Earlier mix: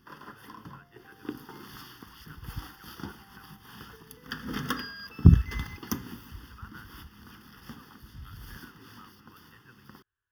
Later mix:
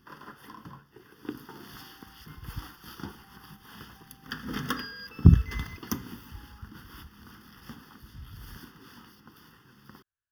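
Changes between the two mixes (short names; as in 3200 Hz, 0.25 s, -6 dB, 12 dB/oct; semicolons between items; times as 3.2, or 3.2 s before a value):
speech -8.5 dB; second sound: entry +0.75 s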